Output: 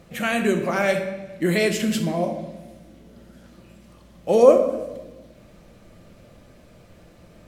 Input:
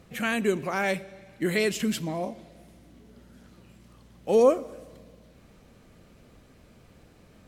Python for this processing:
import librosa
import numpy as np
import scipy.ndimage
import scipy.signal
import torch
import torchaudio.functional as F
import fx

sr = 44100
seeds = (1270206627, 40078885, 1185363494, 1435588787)

y = fx.peak_eq(x, sr, hz=600.0, db=8.5, octaves=0.2)
y = fx.room_shoebox(y, sr, seeds[0], volume_m3=450.0, walls='mixed', distance_m=0.79)
y = y * 10.0 ** (3.0 / 20.0)